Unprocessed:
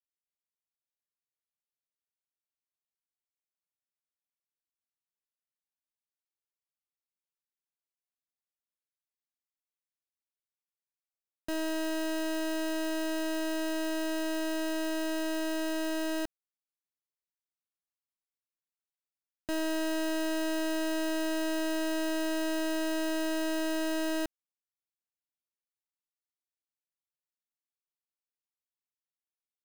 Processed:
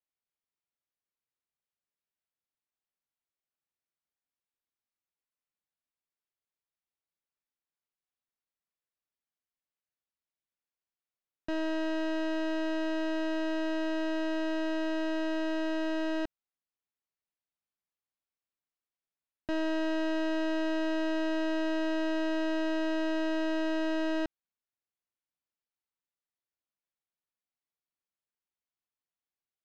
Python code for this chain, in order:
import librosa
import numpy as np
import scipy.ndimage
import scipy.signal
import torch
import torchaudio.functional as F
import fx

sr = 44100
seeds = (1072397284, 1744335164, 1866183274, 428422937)

y = fx.air_absorb(x, sr, metres=190.0)
y = y * librosa.db_to_amplitude(1.5)